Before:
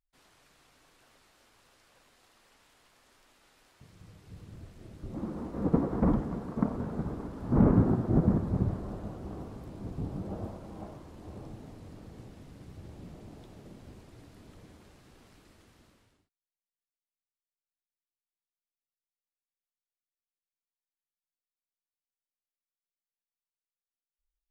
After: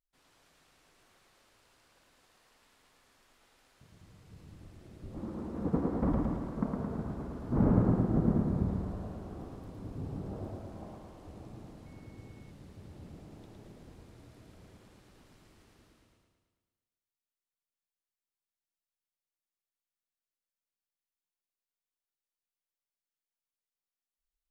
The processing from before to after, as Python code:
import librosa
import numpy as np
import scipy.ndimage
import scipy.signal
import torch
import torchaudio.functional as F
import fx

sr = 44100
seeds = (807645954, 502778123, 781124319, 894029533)

y = fx.echo_feedback(x, sr, ms=110, feedback_pct=59, wet_db=-3)
y = fx.dmg_tone(y, sr, hz=2200.0, level_db=-61.0, at=(11.85, 12.5), fade=0.02)
y = F.gain(torch.from_numpy(y), -5.0).numpy()